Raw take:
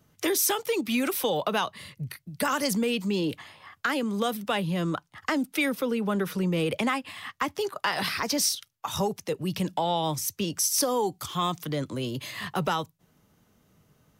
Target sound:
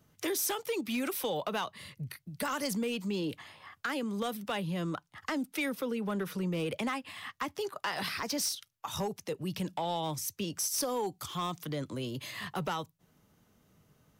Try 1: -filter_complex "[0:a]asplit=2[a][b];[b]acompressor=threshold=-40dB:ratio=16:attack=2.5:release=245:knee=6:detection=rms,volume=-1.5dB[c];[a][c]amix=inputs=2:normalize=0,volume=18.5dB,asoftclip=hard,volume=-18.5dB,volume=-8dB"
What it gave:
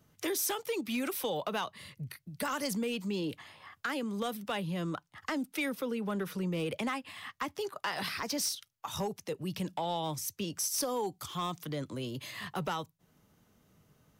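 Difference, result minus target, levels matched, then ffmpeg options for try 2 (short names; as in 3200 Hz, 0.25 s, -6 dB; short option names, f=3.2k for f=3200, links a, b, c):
compressor: peak gain reduction +5.5 dB
-filter_complex "[0:a]asplit=2[a][b];[b]acompressor=threshold=-34dB:ratio=16:attack=2.5:release=245:knee=6:detection=rms,volume=-1.5dB[c];[a][c]amix=inputs=2:normalize=0,volume=18.5dB,asoftclip=hard,volume=-18.5dB,volume=-8dB"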